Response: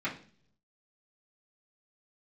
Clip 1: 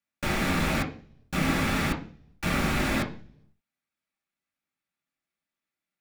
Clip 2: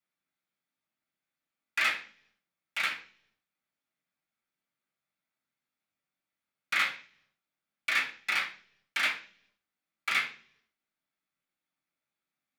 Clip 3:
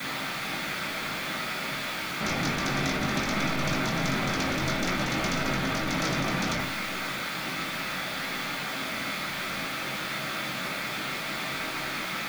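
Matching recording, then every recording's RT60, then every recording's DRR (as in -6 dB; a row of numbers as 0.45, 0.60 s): 2; 0.45, 0.50, 0.45 s; -2.0, -10.0, -19.0 dB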